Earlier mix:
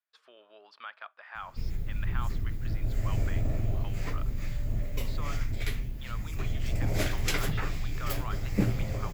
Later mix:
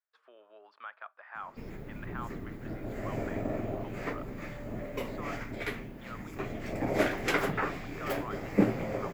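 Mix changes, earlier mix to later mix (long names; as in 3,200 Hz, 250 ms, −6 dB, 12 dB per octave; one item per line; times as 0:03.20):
background +7.5 dB
master: add three-way crossover with the lows and the highs turned down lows −24 dB, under 200 Hz, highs −15 dB, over 2,100 Hz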